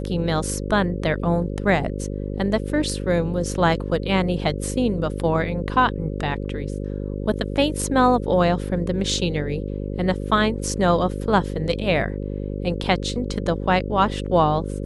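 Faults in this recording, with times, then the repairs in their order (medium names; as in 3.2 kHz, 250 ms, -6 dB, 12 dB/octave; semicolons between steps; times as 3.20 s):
buzz 50 Hz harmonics 11 -28 dBFS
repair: de-hum 50 Hz, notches 11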